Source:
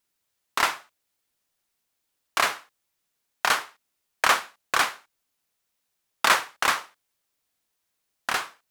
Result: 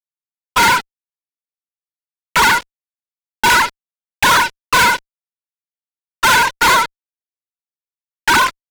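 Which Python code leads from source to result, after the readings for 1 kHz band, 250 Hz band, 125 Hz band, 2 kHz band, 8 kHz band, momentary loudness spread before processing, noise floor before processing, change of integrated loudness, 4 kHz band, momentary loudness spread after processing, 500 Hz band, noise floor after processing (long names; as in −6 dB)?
+13.0 dB, +17.0 dB, +21.0 dB, +12.0 dB, +11.0 dB, 9 LU, −79 dBFS, +11.5 dB, +11.0 dB, 8 LU, +9.5 dB, below −85 dBFS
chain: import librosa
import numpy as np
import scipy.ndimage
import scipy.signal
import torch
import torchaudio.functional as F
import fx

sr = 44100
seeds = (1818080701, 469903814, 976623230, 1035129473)

y = fx.sine_speech(x, sr)
y = fx.fuzz(y, sr, gain_db=45.0, gate_db=-45.0)
y = y * 10.0 ** (3.5 / 20.0)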